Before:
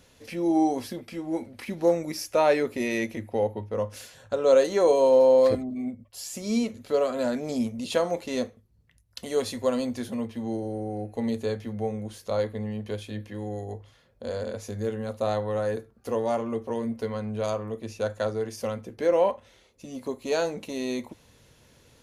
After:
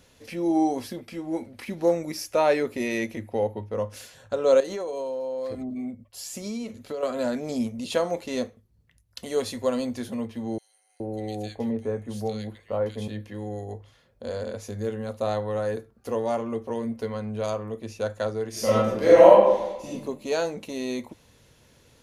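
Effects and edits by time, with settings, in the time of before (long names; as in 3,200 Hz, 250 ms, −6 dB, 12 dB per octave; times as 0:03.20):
0:04.60–0:07.03: downward compressor 10 to 1, threshold −28 dBFS
0:10.58–0:13.08: multiband delay without the direct sound highs, lows 420 ms, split 1,900 Hz
0:18.50–0:19.88: thrown reverb, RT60 1 s, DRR −10 dB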